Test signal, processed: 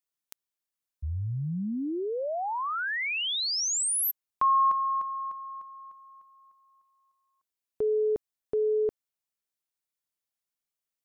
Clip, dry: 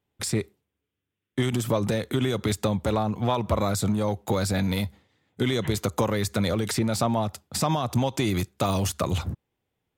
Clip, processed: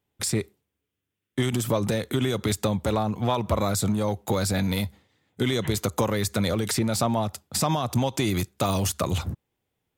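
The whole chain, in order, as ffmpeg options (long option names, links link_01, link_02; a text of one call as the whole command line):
ffmpeg -i in.wav -af "highshelf=frequency=5700:gain=4.5" out.wav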